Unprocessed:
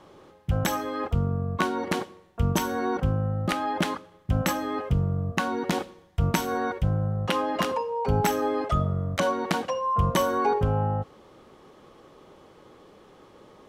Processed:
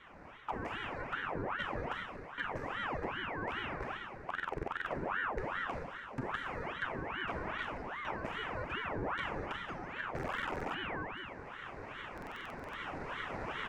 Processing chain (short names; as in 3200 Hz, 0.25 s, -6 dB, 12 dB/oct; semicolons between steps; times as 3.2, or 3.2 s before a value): spectral whitening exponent 0.6; recorder AGC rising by 9.3 dB/s; LPF 1700 Hz 12 dB/oct; fixed phaser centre 630 Hz, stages 8; compressor 2.5:1, threshold -44 dBFS, peak gain reduction 14.5 dB; bell 860 Hz -8.5 dB 1.2 oct; echo 1.024 s -16 dB; Schroeder reverb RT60 2.4 s, combs from 29 ms, DRR 2 dB; stuck buffer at 4.26/10.14/12.13, samples 2048, times 12; ring modulator with a swept carrier 940 Hz, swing 80%, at 2.5 Hz; gain +5 dB